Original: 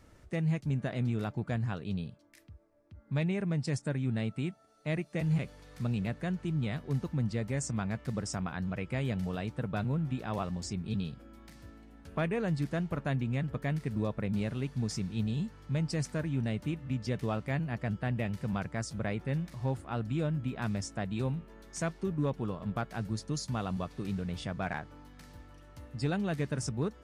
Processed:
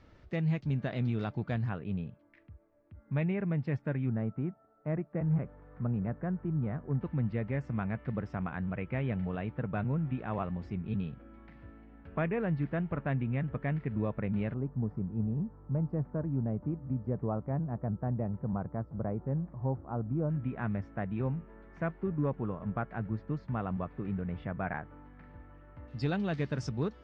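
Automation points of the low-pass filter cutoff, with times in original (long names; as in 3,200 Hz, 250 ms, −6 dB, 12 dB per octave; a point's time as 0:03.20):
low-pass filter 24 dB per octave
4,700 Hz
from 0:01.69 2,500 Hz
from 0:04.09 1,500 Hz
from 0:07.01 2,500 Hz
from 0:14.54 1,100 Hz
from 0:20.30 2,100 Hz
from 0:25.88 5,000 Hz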